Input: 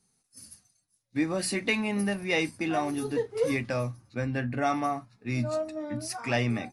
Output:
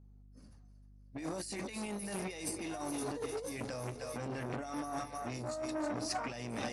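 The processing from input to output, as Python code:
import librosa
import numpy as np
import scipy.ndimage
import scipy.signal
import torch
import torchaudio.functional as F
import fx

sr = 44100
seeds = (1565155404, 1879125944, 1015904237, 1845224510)

y = fx.env_lowpass(x, sr, base_hz=740.0, full_db=-24.5)
y = fx.bass_treble(y, sr, bass_db=-4, treble_db=13)
y = fx.echo_split(y, sr, split_hz=440.0, low_ms=102, high_ms=309, feedback_pct=52, wet_db=-15.0)
y = fx.over_compress(y, sr, threshold_db=-35.0, ratio=-1.0)
y = fx.add_hum(y, sr, base_hz=50, snr_db=20)
y = fx.dynamic_eq(y, sr, hz=2600.0, q=0.78, threshold_db=-48.0, ratio=4.0, max_db=-5)
y = fx.transformer_sat(y, sr, knee_hz=1000.0)
y = y * 10.0 ** (-1.5 / 20.0)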